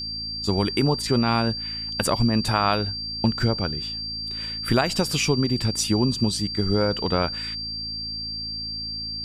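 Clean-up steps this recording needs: de-hum 54.9 Hz, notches 5; notch 4700 Hz, Q 30

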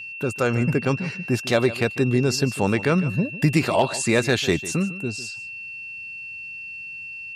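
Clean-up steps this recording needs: clip repair -8 dBFS; notch 2700 Hz, Q 30; inverse comb 0.15 s -16 dB

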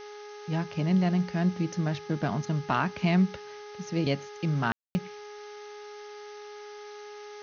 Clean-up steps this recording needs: de-hum 416 Hz, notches 5; room tone fill 4.72–4.95; noise print and reduce 30 dB

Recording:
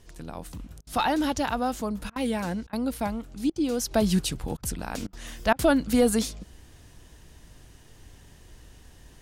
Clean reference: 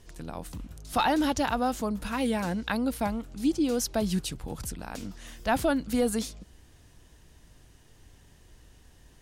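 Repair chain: interpolate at 0.81/2.1/2.67/3.5/4.57/5.07/5.53, 58 ms; gain 0 dB, from 3.91 s -5 dB

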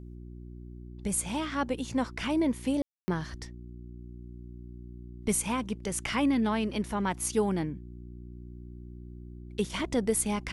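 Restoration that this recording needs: de-hum 60.1 Hz, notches 6; room tone fill 2.82–3.08

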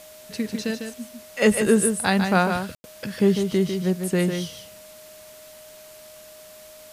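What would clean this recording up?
notch 620 Hz, Q 30; room tone fill 2.75–2.84; denoiser 22 dB, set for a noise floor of -45 dBFS; inverse comb 0.15 s -6.5 dB

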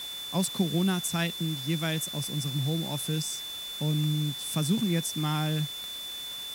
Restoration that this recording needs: de-click; notch 3500 Hz, Q 30; noise print and reduce 30 dB

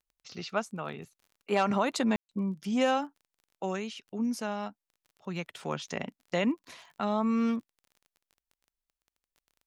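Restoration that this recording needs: de-click; room tone fill 2.16–2.29

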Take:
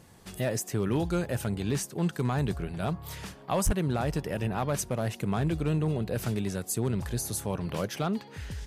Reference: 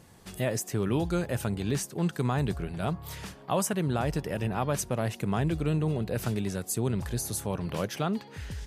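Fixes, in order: clip repair -19.5 dBFS; 3.65–3.77 HPF 140 Hz 24 dB/oct

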